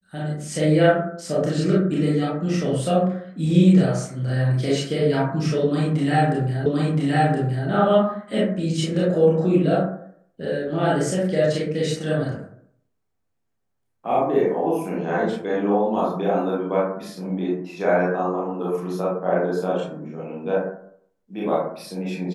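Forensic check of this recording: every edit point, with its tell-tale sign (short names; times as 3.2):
6.66 repeat of the last 1.02 s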